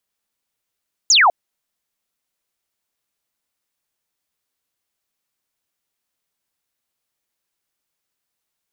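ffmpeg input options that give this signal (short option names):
-f lavfi -i "aevalsrc='0.355*clip(t/0.002,0,1)*clip((0.2-t)/0.002,0,1)*sin(2*PI*7300*0.2/log(640/7300)*(exp(log(640/7300)*t/0.2)-1))':d=0.2:s=44100"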